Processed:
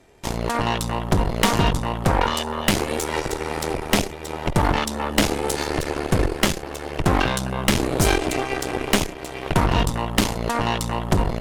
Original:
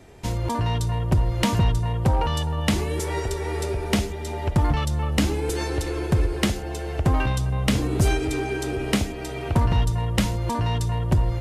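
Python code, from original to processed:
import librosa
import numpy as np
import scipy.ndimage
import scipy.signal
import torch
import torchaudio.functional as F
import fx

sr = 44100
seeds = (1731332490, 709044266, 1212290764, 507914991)

y = fx.cheby_harmonics(x, sr, harmonics=(3, 4, 7), levels_db=(-16, -10, -33), full_scale_db=-12.0)
y = fx.peak_eq(y, sr, hz=88.0, db=-7.0, octaves=2.4)
y = y * librosa.db_to_amplitude(5.0)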